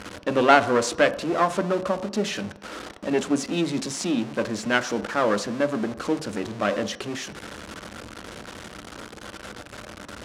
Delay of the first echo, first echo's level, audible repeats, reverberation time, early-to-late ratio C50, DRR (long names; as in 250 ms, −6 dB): no echo audible, no echo audible, no echo audible, 0.70 s, 15.5 dB, 10.0 dB